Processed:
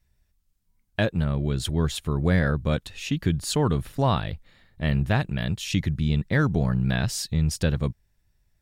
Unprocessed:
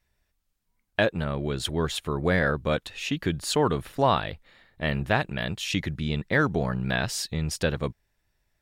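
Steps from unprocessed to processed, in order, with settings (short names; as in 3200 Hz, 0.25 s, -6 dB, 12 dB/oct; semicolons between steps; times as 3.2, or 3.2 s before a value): tone controls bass +11 dB, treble +5 dB; gain -3.5 dB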